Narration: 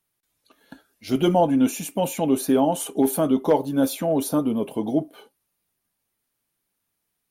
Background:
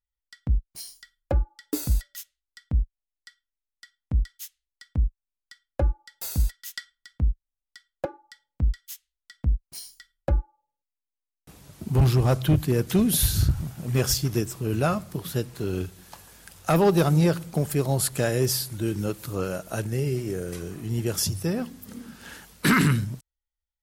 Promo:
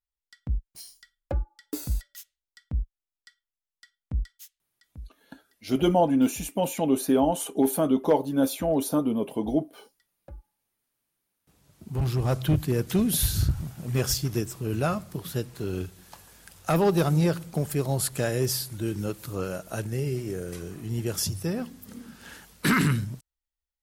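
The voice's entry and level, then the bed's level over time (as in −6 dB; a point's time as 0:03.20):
4.60 s, −2.5 dB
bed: 0:04.27 −5 dB
0:05.17 −21.5 dB
0:10.98 −21.5 dB
0:12.40 −2.5 dB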